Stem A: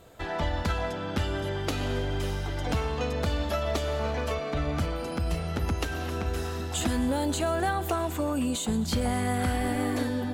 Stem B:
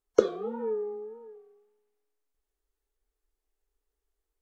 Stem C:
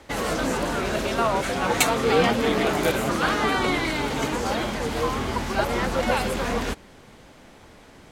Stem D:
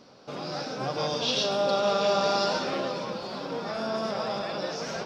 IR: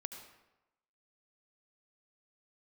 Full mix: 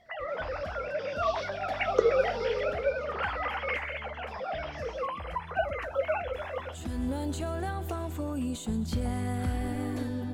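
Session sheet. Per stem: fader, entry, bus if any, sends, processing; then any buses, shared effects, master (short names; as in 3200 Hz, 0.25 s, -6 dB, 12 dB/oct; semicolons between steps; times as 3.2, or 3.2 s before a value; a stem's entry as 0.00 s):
6.54 s -22 dB -> 7.08 s -9.5 dB, 0.00 s, no send, low shelf 310 Hz +9 dB
-0.5 dB, 1.80 s, no send, HPF 600 Hz 12 dB/oct; tilt -2 dB/oct
-4.5 dB, 0.00 s, no send, sine-wave speech; flange 0.7 Hz, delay 8.8 ms, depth 4.2 ms, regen -53%
-14.5 dB, 0.00 s, muted 3.75–4.28, no send, ensemble effect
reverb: off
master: dry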